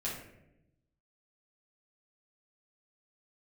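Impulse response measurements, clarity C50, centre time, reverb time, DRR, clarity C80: 3.5 dB, 44 ms, 0.85 s, -7.5 dB, 7.5 dB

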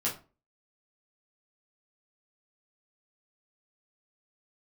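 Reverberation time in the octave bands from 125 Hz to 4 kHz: 0.35, 0.40, 0.35, 0.30, 0.25, 0.25 s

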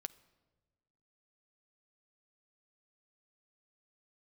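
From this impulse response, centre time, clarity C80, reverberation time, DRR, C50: 3 ms, 21.5 dB, 1.3 s, 12.0 dB, 19.5 dB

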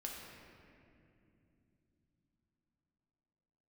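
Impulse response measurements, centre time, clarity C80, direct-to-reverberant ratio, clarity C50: 0.107 s, 2.0 dB, -2.0 dB, 0.5 dB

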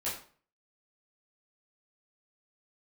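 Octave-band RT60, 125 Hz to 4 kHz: 0.50, 0.45, 0.45, 0.45, 0.40, 0.35 s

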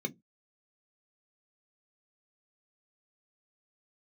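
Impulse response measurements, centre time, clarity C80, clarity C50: 6 ms, 36.0 dB, 28.5 dB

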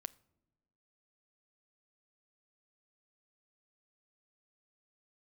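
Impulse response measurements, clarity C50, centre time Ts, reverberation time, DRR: 23.0 dB, 2 ms, not exponential, 16.5 dB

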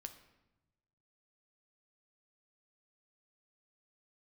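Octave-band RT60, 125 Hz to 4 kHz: 1.7, 1.3, 1.1, 0.95, 0.85, 0.70 s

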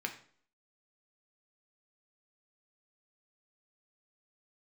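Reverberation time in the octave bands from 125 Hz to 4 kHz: 0.50, 0.55, 0.55, 0.50, 0.45, 0.45 s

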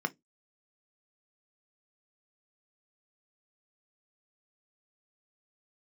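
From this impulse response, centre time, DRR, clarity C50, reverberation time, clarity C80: 3 ms, 8.5 dB, 27.5 dB, 0.15 s, 39.0 dB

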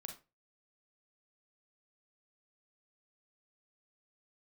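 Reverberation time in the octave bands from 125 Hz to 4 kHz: 0.35, 0.30, 0.30, 0.25, 0.25, 0.20 s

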